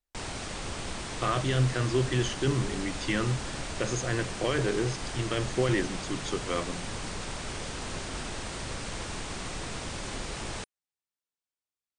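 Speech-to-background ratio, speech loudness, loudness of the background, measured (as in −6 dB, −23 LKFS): 6.0 dB, −30.5 LKFS, −36.5 LKFS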